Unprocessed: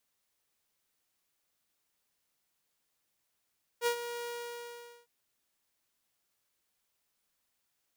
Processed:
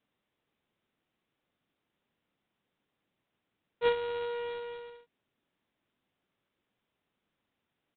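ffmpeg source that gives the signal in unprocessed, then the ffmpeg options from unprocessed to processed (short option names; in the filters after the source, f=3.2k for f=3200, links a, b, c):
-f lavfi -i "aevalsrc='0.0708*(2*mod(476*t,1)-1)':d=1.257:s=44100,afade=t=in:d=0.056,afade=t=out:st=0.056:d=0.086:silence=0.266,afade=t=out:st=0.45:d=0.807"
-af "equalizer=f=210:w=0.46:g=11,aresample=8000,acrusher=bits=3:mode=log:mix=0:aa=0.000001,aresample=44100"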